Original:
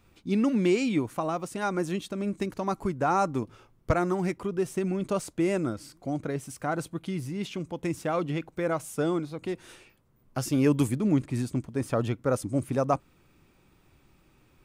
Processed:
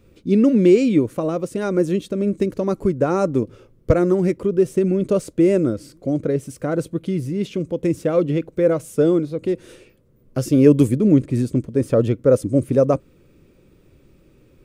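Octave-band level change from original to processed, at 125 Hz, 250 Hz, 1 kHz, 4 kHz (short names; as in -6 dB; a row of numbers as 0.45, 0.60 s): +9.0, +10.0, -1.0, +2.0 dB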